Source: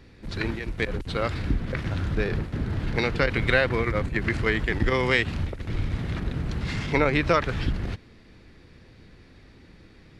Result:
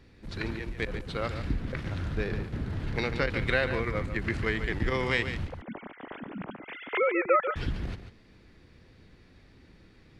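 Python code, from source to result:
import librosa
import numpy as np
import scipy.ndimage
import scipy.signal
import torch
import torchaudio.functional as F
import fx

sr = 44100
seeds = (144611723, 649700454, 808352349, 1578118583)

y = fx.sine_speech(x, sr, at=(5.47, 7.56))
y = y + 10.0 ** (-10.0 / 20.0) * np.pad(y, (int(143 * sr / 1000.0), 0))[:len(y)]
y = y * 10.0 ** (-5.5 / 20.0)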